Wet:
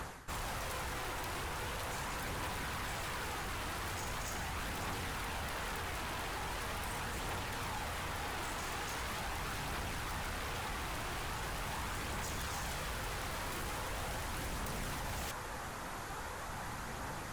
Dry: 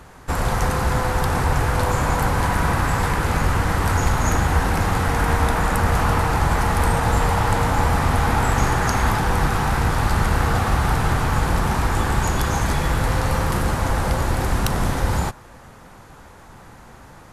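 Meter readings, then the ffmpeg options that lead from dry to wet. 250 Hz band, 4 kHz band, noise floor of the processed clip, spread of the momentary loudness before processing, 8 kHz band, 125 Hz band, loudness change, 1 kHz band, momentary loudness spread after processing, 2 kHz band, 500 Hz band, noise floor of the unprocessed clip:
-21.5 dB, -11.0 dB, -43 dBFS, 3 LU, -13.0 dB, -24.0 dB, -19.0 dB, -19.0 dB, 3 LU, -15.5 dB, -19.0 dB, -44 dBFS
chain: -af "tiltshelf=f=650:g=-3.5,areverse,acompressor=threshold=-35dB:ratio=8,areverse,aeval=exprs='0.015*(abs(mod(val(0)/0.015+3,4)-2)-1)':c=same,aphaser=in_gain=1:out_gain=1:delay=3.2:decay=0.21:speed=0.41:type=triangular,volume=1dB"

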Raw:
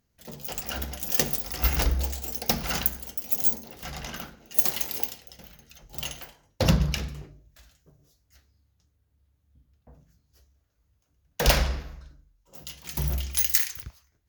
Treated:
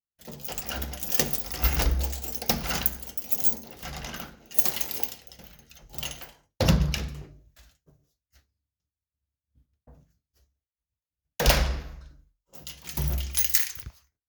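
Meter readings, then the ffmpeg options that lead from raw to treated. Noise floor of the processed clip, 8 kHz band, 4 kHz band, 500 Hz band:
under -85 dBFS, 0.0 dB, 0.0 dB, 0.0 dB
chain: -af "agate=range=-33dB:threshold=-54dB:ratio=3:detection=peak"

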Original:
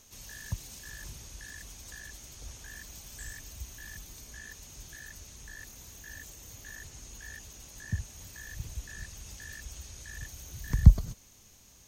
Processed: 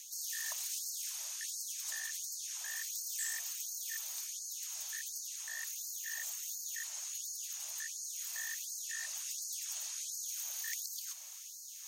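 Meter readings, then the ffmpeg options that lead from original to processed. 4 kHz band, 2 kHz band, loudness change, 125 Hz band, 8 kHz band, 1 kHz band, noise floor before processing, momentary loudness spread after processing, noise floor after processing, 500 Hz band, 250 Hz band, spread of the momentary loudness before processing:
+6.0 dB, 0.0 dB, -3.5 dB, under -40 dB, +8.5 dB, -4.0 dB, -57 dBFS, 3 LU, -49 dBFS, under -10 dB, under -40 dB, 9 LU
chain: -filter_complex "[0:a]afreqshift=57,lowshelf=f=350:g=-11.5,areverse,acompressor=mode=upward:threshold=-52dB:ratio=2.5,areverse,bass=f=250:g=-1,treble=f=4k:g=6,asplit=2[a][b];[b]asoftclip=type=tanh:threshold=-28.5dB,volume=-6.5dB[c];[a][c]amix=inputs=2:normalize=0,afftfilt=real='re*gte(b*sr/1024,530*pow(4200/530,0.5+0.5*sin(2*PI*1.4*pts/sr)))':imag='im*gte(b*sr/1024,530*pow(4200/530,0.5+0.5*sin(2*PI*1.4*pts/sr)))':win_size=1024:overlap=0.75"

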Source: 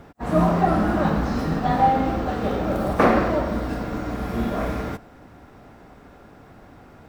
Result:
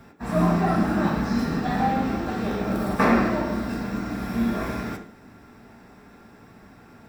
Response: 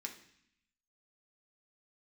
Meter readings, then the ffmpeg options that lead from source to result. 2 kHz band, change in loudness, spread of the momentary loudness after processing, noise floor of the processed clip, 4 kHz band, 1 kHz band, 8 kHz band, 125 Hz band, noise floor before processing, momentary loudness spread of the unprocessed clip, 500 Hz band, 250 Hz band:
0.0 dB, -2.0 dB, 9 LU, -50 dBFS, -0.5 dB, -4.5 dB, +1.5 dB, -2.0 dB, -48 dBFS, 10 LU, -4.5 dB, 0.0 dB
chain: -filter_complex "[0:a]highshelf=f=7.5k:g=5.5[a];[1:a]atrim=start_sample=2205,afade=t=out:st=0.21:d=0.01,atrim=end_sample=9702[b];[a][b]afir=irnorm=-1:irlink=0,volume=1.5dB"

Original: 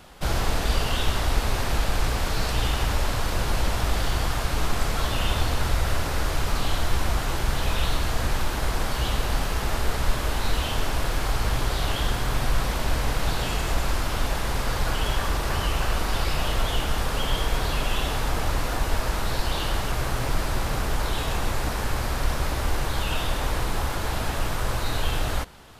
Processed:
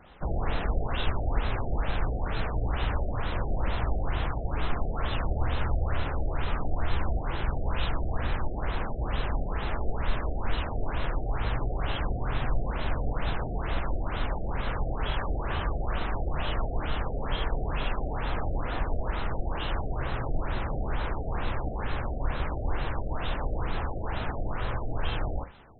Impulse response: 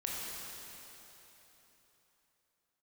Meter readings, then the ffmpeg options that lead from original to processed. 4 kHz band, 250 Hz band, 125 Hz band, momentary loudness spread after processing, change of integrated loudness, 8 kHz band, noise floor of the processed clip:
-11.5 dB, -4.0 dB, -4.0 dB, 3 LU, -5.5 dB, under -40 dB, -33 dBFS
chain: -filter_complex "[0:a]asplit=2[a][b];[1:a]atrim=start_sample=2205,atrim=end_sample=3528[c];[b][c]afir=irnorm=-1:irlink=0,volume=-4dB[d];[a][d]amix=inputs=2:normalize=0,afftfilt=real='re*lt(b*sr/1024,760*pow(4200/760,0.5+0.5*sin(2*PI*2.2*pts/sr)))':imag='im*lt(b*sr/1024,760*pow(4200/760,0.5+0.5*sin(2*PI*2.2*pts/sr)))':win_size=1024:overlap=0.75,volume=-7.5dB"

